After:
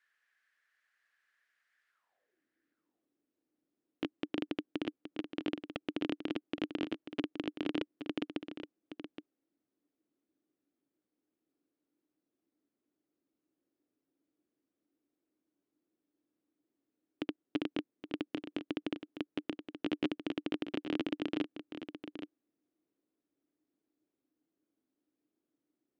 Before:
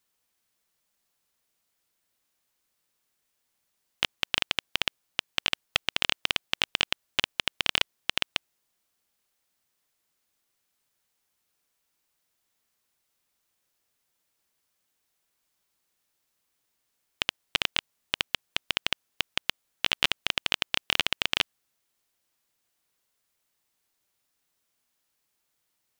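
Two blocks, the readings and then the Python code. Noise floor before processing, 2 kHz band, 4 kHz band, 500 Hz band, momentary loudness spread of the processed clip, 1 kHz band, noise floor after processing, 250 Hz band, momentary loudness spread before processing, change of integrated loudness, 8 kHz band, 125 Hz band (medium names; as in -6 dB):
-78 dBFS, -17.5 dB, -20.5 dB, +1.5 dB, 11 LU, -12.0 dB, under -85 dBFS, +11.5 dB, 6 LU, -11.5 dB, under -25 dB, -4.5 dB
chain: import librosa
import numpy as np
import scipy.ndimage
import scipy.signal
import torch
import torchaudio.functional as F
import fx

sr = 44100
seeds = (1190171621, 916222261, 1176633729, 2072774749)

p1 = fx.peak_eq(x, sr, hz=940.0, db=-5.0, octaves=0.44)
p2 = fx.filter_sweep_bandpass(p1, sr, from_hz=1700.0, to_hz=300.0, start_s=1.89, end_s=2.41, q=7.1)
p3 = p2 + fx.echo_single(p2, sr, ms=821, db=-10.0, dry=0)
y = F.gain(torch.from_numpy(p3), 16.5).numpy()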